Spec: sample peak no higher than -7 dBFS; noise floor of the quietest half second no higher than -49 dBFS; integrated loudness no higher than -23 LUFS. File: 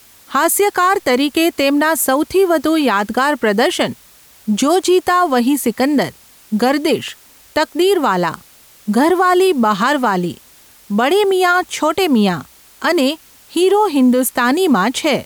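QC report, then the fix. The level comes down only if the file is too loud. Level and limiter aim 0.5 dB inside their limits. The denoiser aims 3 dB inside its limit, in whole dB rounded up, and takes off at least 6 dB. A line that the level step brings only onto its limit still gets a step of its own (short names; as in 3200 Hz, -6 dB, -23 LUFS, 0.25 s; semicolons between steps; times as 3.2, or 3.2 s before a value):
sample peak -5.0 dBFS: fail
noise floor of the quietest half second -46 dBFS: fail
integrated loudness -15.0 LUFS: fail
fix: gain -8.5 dB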